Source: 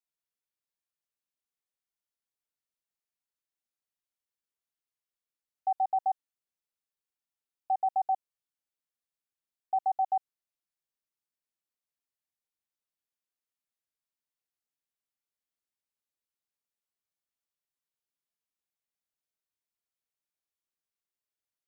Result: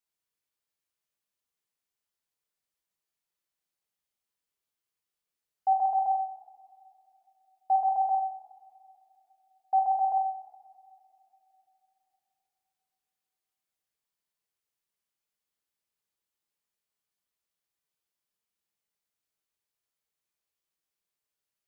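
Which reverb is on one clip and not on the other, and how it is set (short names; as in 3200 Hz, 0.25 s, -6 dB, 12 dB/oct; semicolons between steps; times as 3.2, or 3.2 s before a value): two-slope reverb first 0.69 s, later 3.3 s, from -21 dB, DRR 1 dB; gain +1.5 dB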